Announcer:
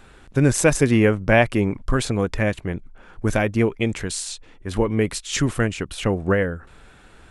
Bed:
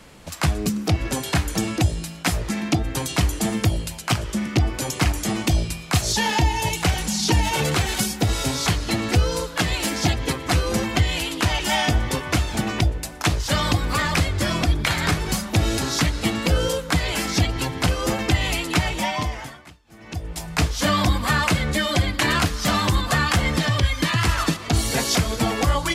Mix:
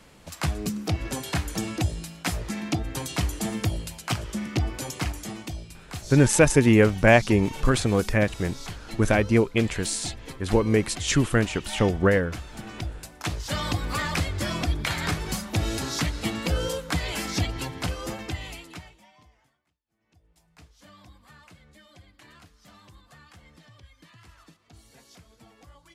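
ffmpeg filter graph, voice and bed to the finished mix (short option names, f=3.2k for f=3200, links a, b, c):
-filter_complex "[0:a]adelay=5750,volume=-0.5dB[a];[1:a]volume=4.5dB,afade=t=out:st=4.72:d=0.85:silence=0.298538,afade=t=in:st=12.54:d=1.33:silence=0.298538,afade=t=out:st=17.44:d=1.54:silence=0.0501187[b];[a][b]amix=inputs=2:normalize=0"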